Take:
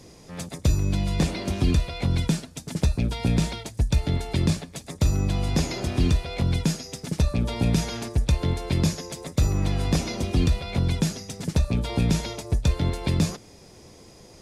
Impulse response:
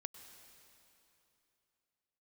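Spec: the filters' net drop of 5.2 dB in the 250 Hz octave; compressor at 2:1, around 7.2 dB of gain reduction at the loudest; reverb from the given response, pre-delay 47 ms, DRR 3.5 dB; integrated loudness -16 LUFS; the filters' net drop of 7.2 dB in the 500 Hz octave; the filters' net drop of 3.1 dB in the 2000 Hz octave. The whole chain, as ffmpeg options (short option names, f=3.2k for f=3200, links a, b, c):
-filter_complex "[0:a]equalizer=f=250:t=o:g=-7,equalizer=f=500:t=o:g=-7,equalizer=f=2k:t=o:g=-3.5,acompressor=threshold=-30dB:ratio=2,asplit=2[a][b];[1:a]atrim=start_sample=2205,adelay=47[c];[b][c]afir=irnorm=-1:irlink=0,volume=0.5dB[d];[a][d]amix=inputs=2:normalize=0,volume=15dB"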